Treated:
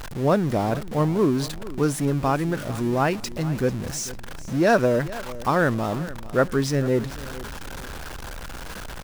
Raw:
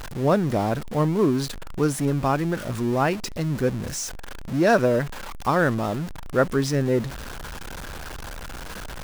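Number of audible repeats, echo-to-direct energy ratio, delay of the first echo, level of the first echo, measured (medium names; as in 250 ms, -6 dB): 3, -16.5 dB, 445 ms, -17.0 dB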